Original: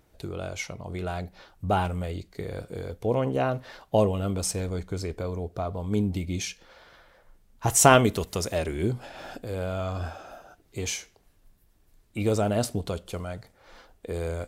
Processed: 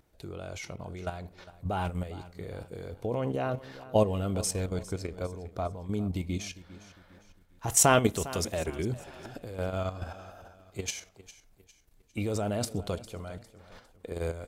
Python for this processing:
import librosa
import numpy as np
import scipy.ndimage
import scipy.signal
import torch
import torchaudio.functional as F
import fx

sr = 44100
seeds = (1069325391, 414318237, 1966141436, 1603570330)

p1 = fx.level_steps(x, sr, step_db=10)
y = p1 + fx.echo_feedback(p1, sr, ms=404, feedback_pct=39, wet_db=-17.0, dry=0)